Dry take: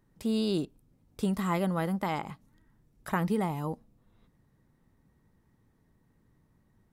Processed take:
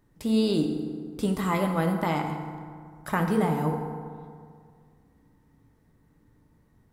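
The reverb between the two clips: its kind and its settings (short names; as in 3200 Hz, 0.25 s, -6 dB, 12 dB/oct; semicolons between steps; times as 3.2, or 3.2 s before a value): FDN reverb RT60 2.1 s, low-frequency decay 1.1×, high-frequency decay 0.5×, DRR 3 dB; gain +3 dB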